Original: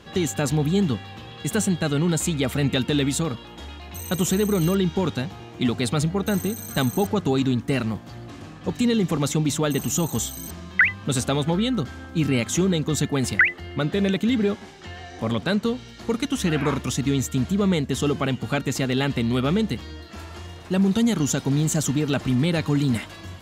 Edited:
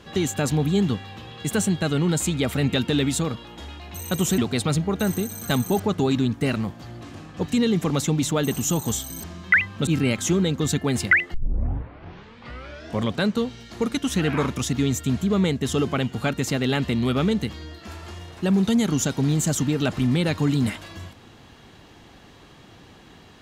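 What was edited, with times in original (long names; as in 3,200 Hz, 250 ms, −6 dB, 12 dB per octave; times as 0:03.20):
0:04.38–0:05.65: remove
0:11.14–0:12.15: remove
0:13.62: tape start 1.71 s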